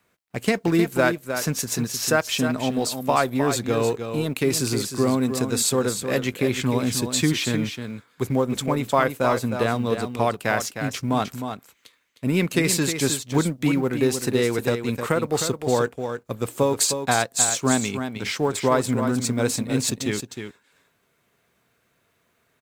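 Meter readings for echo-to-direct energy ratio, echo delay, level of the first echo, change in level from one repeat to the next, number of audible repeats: -8.0 dB, 309 ms, -8.0 dB, no regular repeats, 1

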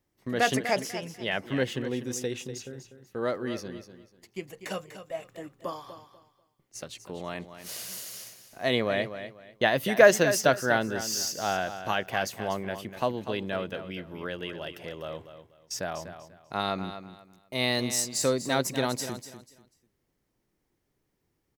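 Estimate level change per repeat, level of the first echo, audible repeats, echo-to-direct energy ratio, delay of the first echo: -12.0 dB, -11.0 dB, 2, -10.5 dB, 245 ms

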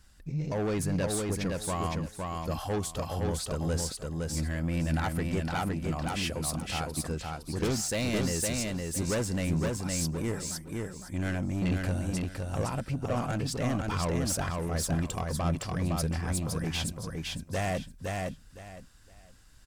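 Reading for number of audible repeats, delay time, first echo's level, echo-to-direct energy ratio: 3, 512 ms, -3.0 dB, -3.0 dB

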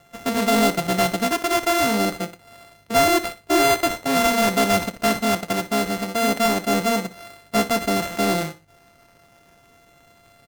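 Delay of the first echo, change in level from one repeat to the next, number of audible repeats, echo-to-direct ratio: 60 ms, -10.0 dB, 2, -14.5 dB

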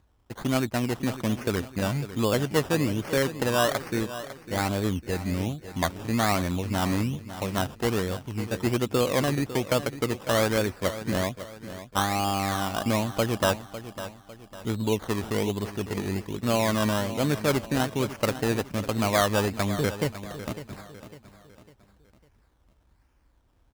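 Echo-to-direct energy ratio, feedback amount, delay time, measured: -12.0 dB, 41%, 552 ms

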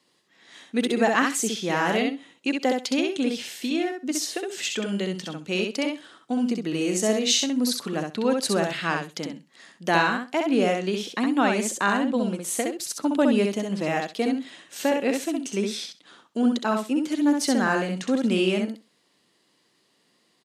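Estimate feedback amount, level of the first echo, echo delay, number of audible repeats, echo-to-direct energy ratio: 15%, -4.0 dB, 65 ms, 2, -4.0 dB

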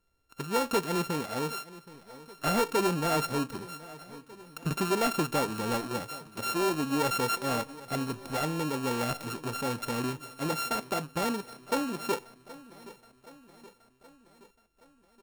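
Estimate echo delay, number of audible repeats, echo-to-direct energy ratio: 773 ms, 4, -16.5 dB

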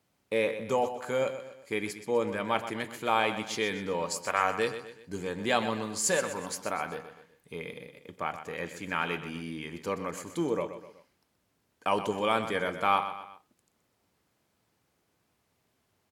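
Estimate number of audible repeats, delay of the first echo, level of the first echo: 3, 125 ms, -11.0 dB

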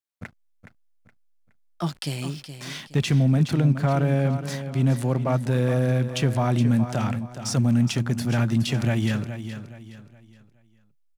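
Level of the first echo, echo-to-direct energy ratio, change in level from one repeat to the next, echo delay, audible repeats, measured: -10.5 dB, -10.0 dB, -9.0 dB, 419 ms, 3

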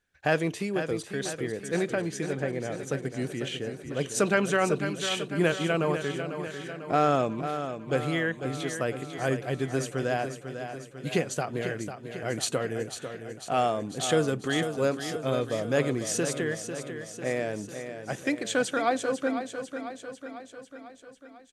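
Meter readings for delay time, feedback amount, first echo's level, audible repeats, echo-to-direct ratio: 497 ms, 59%, -9.0 dB, 6, -7.0 dB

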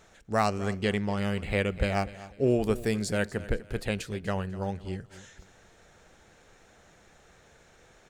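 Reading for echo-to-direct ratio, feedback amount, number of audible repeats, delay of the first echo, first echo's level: -16.5 dB, 31%, 2, 247 ms, -17.0 dB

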